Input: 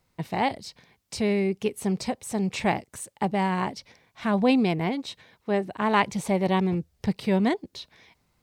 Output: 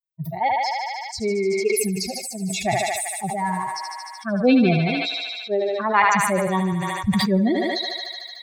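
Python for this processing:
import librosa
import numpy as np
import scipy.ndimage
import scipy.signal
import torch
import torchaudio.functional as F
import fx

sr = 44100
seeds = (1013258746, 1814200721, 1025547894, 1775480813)

y = fx.bin_expand(x, sr, power=3.0)
y = fx.notch(y, sr, hz=3000.0, q=6.1)
y = fx.echo_thinned(y, sr, ms=75, feedback_pct=82, hz=490.0, wet_db=-9)
y = fx.sustainer(y, sr, db_per_s=23.0)
y = y * 10.0 ** (7.5 / 20.0)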